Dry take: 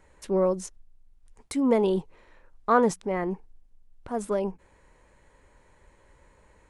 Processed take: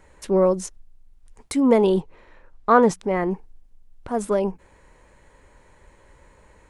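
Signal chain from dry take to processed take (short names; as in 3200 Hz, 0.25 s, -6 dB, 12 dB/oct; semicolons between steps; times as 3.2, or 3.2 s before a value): 1.99–2.98 high shelf 5700 Hz -> 9300 Hz -9.5 dB; gain +5.5 dB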